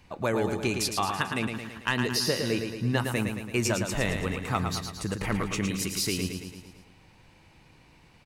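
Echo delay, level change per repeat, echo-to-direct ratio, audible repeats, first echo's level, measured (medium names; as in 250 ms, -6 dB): 111 ms, -5.0 dB, -4.5 dB, 6, -6.0 dB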